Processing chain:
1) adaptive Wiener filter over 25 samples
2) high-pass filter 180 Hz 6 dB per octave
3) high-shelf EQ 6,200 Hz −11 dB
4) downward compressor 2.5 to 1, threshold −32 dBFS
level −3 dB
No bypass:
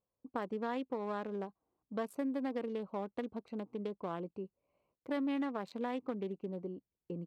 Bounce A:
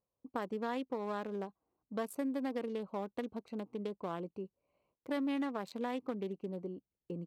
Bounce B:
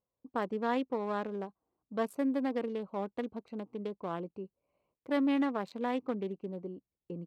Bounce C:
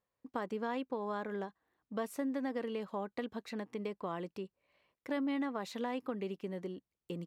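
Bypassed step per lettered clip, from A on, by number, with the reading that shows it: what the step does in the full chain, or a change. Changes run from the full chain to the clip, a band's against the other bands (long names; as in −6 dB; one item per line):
3, 4 kHz band +2.5 dB
4, change in momentary loudness spread +4 LU
1, 4 kHz band +4.0 dB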